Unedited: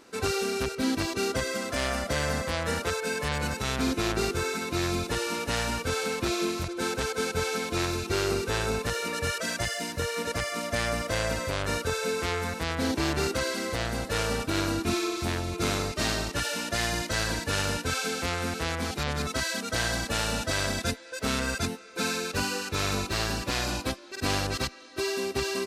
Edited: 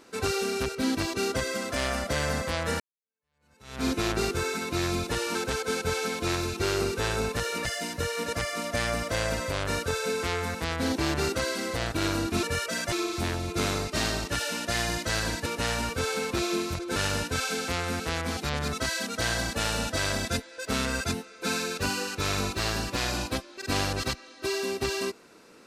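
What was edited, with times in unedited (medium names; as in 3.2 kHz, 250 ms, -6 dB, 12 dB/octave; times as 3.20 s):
2.80–3.85 s: fade in exponential
5.35–6.85 s: move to 17.50 s
9.15–9.64 s: move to 14.96 s
13.91–14.45 s: delete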